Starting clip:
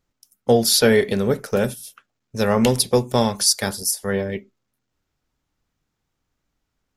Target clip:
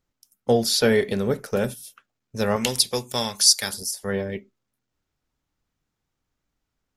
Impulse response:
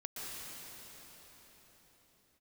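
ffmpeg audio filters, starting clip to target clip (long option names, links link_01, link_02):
-filter_complex "[0:a]acrossover=split=8200[link_01][link_02];[link_02]acompressor=threshold=-28dB:ratio=4:attack=1:release=60[link_03];[link_01][link_03]amix=inputs=2:normalize=0,asettb=1/sr,asplit=3[link_04][link_05][link_06];[link_04]atrim=end=2.564[link_07];[link_05]atrim=start=2.56:end=3.74,asetpts=PTS-STARTPTS,afade=type=in:duration=0.004:curve=qsin,afade=type=out:start_time=1.176:duration=0.004:curve=qsin,tiltshelf=frequency=1500:gain=-8[link_08];[link_06]atrim=start=3.736[link_09];[link_07][link_08]acrossfade=duration=0.004:curve1=hsin:curve2=qsin[link_10];[link_10][link_09]acrossfade=duration=0.004:curve1=qsin:curve2=hsin,volume=-3.5dB"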